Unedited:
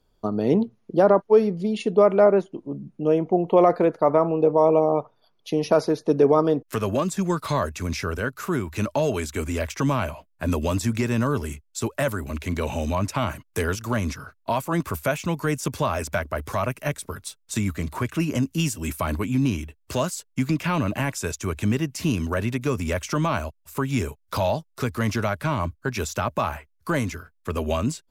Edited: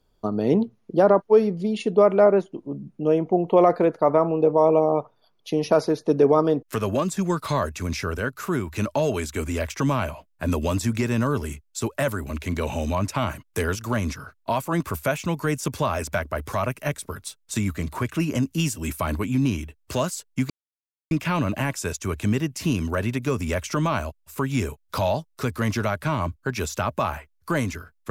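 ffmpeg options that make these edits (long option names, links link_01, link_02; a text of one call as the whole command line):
ffmpeg -i in.wav -filter_complex "[0:a]asplit=2[link_01][link_02];[link_01]atrim=end=20.5,asetpts=PTS-STARTPTS,afade=type=out:start_time=20.496:duration=0.004:curve=hsin,apad=pad_dur=0.61[link_03];[link_02]atrim=start=20.5,asetpts=PTS-STARTPTS,afade=type=in:duration=0.004:curve=hsin[link_04];[link_03][link_04]concat=n=2:v=0:a=1" out.wav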